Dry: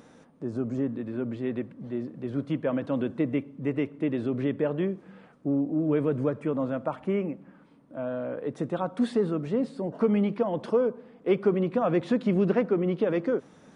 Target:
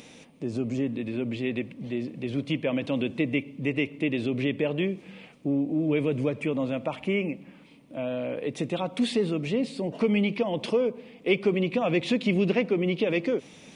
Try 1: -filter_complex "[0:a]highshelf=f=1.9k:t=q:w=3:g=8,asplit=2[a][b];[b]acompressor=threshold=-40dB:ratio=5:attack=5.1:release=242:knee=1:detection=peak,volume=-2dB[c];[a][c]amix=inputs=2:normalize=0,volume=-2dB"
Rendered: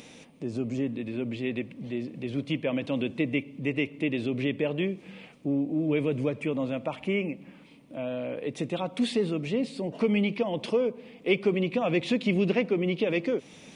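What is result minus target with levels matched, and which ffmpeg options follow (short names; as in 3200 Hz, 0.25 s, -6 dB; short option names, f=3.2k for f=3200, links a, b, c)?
compressor: peak gain reduction +7.5 dB
-filter_complex "[0:a]highshelf=f=1.9k:t=q:w=3:g=8,asplit=2[a][b];[b]acompressor=threshold=-30.5dB:ratio=5:attack=5.1:release=242:knee=1:detection=peak,volume=-2dB[c];[a][c]amix=inputs=2:normalize=0,volume=-2dB"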